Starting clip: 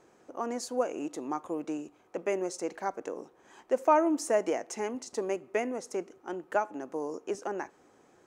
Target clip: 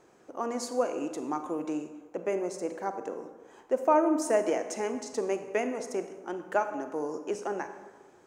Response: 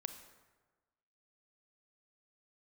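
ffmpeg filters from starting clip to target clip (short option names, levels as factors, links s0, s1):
-filter_complex "[0:a]asettb=1/sr,asplit=3[s0][s1][s2];[s0]atrim=end=1.844[s3];[s1]atrim=start=1.84:end=4.22,asetpts=PTS-STARTPTS,afade=t=in:d=0.004:c=qsin,afade=t=out:st=2.376:d=0.004:c=qsin,equalizer=f=4100:w=0.33:g=-5.5[s4];[s2]atrim=start=4.216[s5];[s3][s4]acrossfade=d=0.004:c1=hsin:c2=qsin[s6];[s6][s5]acrossfade=d=0.004:c1=qsin:c2=hsin[s7];[1:a]atrim=start_sample=2205[s8];[s7][s8]afir=irnorm=-1:irlink=0,volume=1.58"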